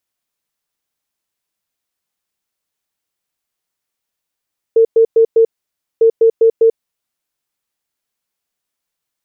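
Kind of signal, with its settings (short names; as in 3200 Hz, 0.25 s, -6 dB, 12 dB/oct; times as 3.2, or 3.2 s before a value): beep pattern sine 453 Hz, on 0.09 s, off 0.11 s, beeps 4, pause 0.56 s, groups 2, -5.5 dBFS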